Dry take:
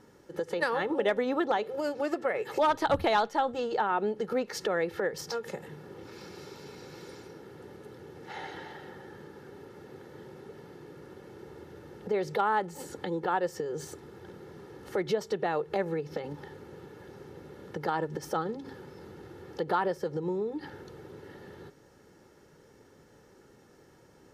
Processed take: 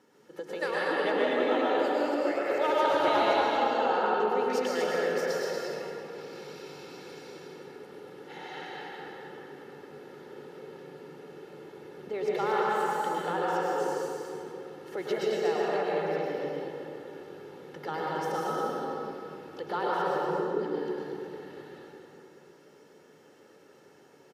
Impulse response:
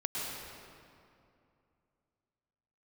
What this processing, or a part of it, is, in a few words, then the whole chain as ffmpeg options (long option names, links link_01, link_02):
stadium PA: -filter_complex "[0:a]highpass=230,equalizer=frequency=2800:width_type=o:width=0.64:gain=4,aecho=1:1:148.7|236.2:0.355|0.562[link_01];[1:a]atrim=start_sample=2205[link_02];[link_01][link_02]afir=irnorm=-1:irlink=0,volume=-4.5dB"